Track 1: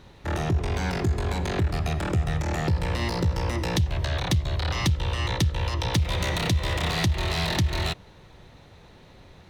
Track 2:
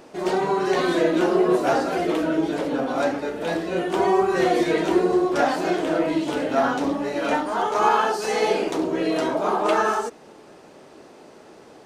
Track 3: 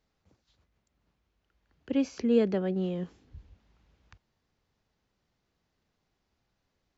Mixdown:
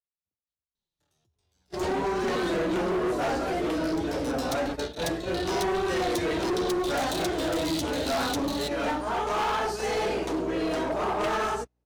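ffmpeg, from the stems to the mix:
-filter_complex "[0:a]acompressor=threshold=-27dB:ratio=6,flanger=delay=4.3:depth=8.9:regen=-7:speed=0.49:shape=triangular,aexciter=amount=6:drive=4.1:freq=3.1k,adelay=750,volume=-7dB[a];[1:a]aeval=exprs='val(0)+0.0126*(sin(2*PI*60*n/s)+sin(2*PI*2*60*n/s)/2+sin(2*PI*3*60*n/s)/3+sin(2*PI*4*60*n/s)/4+sin(2*PI*5*60*n/s)/5)':c=same,adelay=1550,volume=-3.5dB[b];[2:a]acompressor=threshold=-33dB:ratio=6,volume=2dB,asplit=2[c][d];[d]apad=whole_len=451843[e];[a][e]sidechaincompress=threshold=-49dB:ratio=8:attack=48:release=1210[f];[f][b][c]amix=inputs=3:normalize=0,agate=range=-35dB:threshold=-30dB:ratio=16:detection=peak,asoftclip=type=hard:threshold=-24dB"

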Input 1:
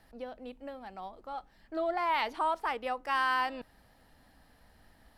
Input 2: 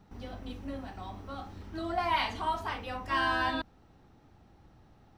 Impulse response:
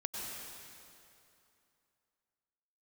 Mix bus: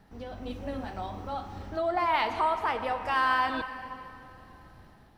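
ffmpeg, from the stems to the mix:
-filter_complex "[0:a]highshelf=f=4.2k:g=-6.5,volume=-4.5dB,asplit=3[a][b][c];[b]volume=-5.5dB[d];[1:a]volume=-1dB[e];[c]apad=whole_len=228097[f];[e][f]sidechaincompress=threshold=-42dB:ratio=8:attack=16:release=404[g];[2:a]atrim=start_sample=2205[h];[d][h]afir=irnorm=-1:irlink=0[i];[a][g][i]amix=inputs=3:normalize=0,dynaudnorm=f=120:g=7:m=5dB"

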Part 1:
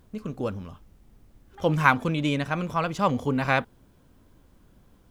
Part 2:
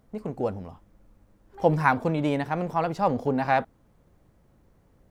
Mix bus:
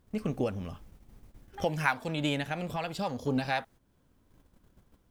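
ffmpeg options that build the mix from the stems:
-filter_complex "[0:a]volume=1.5dB[a];[1:a]highpass=f=590:w=0.5412,highpass=f=590:w=1.3066,tiltshelf=f=1.4k:g=-7.5,volume=-3.5dB,asplit=2[b][c];[c]apad=whole_len=225159[d];[a][d]sidechaincompress=threshold=-43dB:ratio=8:attack=41:release=299[e];[e][b]amix=inputs=2:normalize=0,agate=range=-11dB:threshold=-52dB:ratio=16:detection=peak"

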